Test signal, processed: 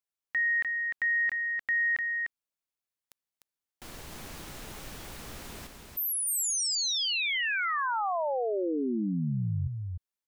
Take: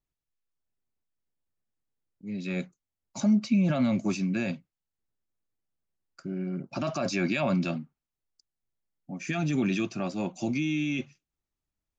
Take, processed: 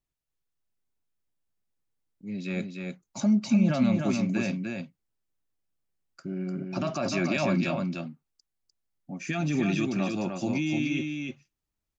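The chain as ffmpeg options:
ffmpeg -i in.wav -af "aecho=1:1:300:0.596" out.wav

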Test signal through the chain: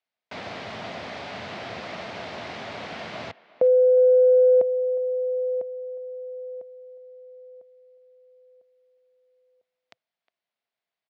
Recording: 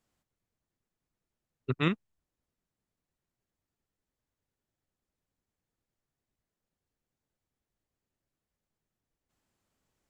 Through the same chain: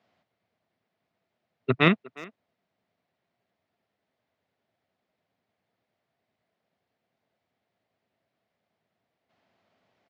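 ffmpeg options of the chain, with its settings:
ffmpeg -i in.wav -filter_complex "[0:a]highpass=frequency=110:width=0.5412,highpass=frequency=110:width=1.3066,equalizer=frequency=140:width_type=q:width=4:gain=-7,equalizer=frequency=310:width_type=q:width=4:gain=-4,equalizer=frequency=670:width_type=q:width=4:gain=10,equalizer=frequency=2100:width_type=q:width=4:gain=4,lowpass=frequency=4400:width=0.5412,lowpass=frequency=4400:width=1.3066,asplit=2[link_01][link_02];[link_02]adelay=360,highpass=300,lowpass=3400,asoftclip=type=hard:threshold=-21dB,volume=-19dB[link_03];[link_01][link_03]amix=inputs=2:normalize=0,acontrast=41,volume=3.5dB" out.wav

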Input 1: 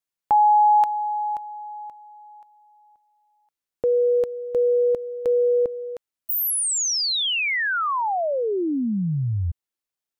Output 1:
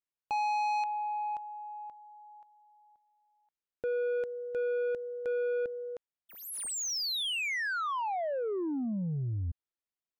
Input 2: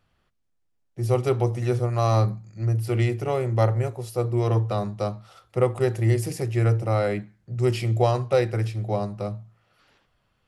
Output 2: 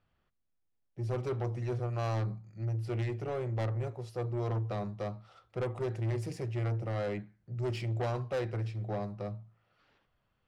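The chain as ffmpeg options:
ffmpeg -i in.wav -af "asoftclip=type=tanh:threshold=-21.5dB,adynamicsmooth=sensitivity=4.5:basefreq=5100,volume=-7dB" out.wav

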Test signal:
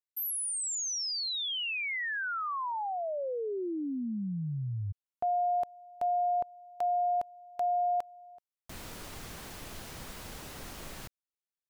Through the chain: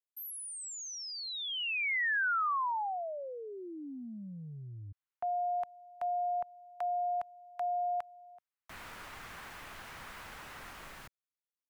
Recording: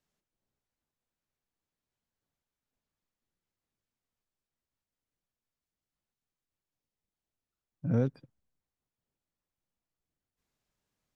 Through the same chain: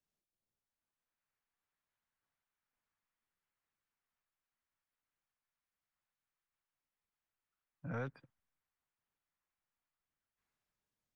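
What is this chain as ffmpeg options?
ffmpeg -i in.wav -filter_complex "[0:a]acrossover=split=240|920|2400[link_01][link_02][link_03][link_04];[link_01]asoftclip=type=tanh:threshold=-31.5dB[link_05];[link_02]alimiter=level_in=10.5dB:limit=-24dB:level=0:latency=1,volume=-10.5dB[link_06];[link_03]dynaudnorm=framelen=260:gausssize=7:maxgain=14.5dB[link_07];[link_05][link_06][link_07][link_04]amix=inputs=4:normalize=0,volume=-9dB" out.wav

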